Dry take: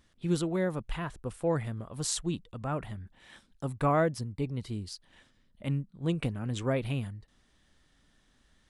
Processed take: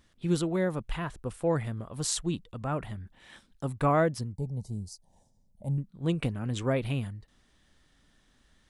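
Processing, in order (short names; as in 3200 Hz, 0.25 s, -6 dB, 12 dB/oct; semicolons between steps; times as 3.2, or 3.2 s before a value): 4.33–5.78 EQ curve 200 Hz 0 dB, 300 Hz -12 dB, 440 Hz -5 dB, 860 Hz +2 dB, 1300 Hz -30 dB, 3100 Hz -25 dB, 6000 Hz -1 dB; gain +1.5 dB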